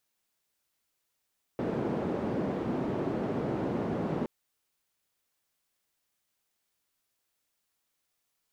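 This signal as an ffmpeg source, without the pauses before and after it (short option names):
-f lavfi -i "anoisesrc=c=white:d=2.67:r=44100:seed=1,highpass=f=160,lowpass=f=360,volume=-6.9dB"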